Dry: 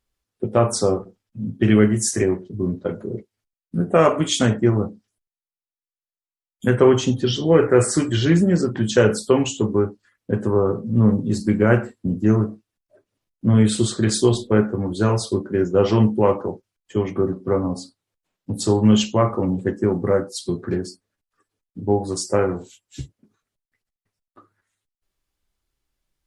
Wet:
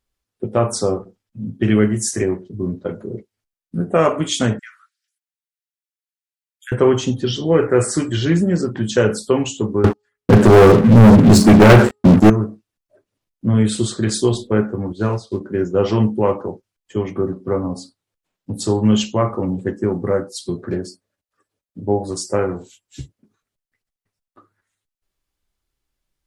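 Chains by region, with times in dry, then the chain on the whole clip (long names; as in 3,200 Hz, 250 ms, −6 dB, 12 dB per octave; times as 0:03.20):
0:04.59–0:06.72: Butterworth high-pass 1,400 Hz 72 dB per octave + downward compressor 1.5 to 1, threshold −37 dBFS
0:09.84–0:12.30: hum removal 417.5 Hz, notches 3 + leveller curve on the samples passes 5
0:14.92–0:15.41: floating-point word with a short mantissa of 4 bits + high-frequency loss of the air 81 metres + expander for the loud parts, over −38 dBFS
0:20.58–0:22.11: high-pass filter 42 Hz + parametric band 580 Hz +7.5 dB 0.34 octaves
whole clip: no processing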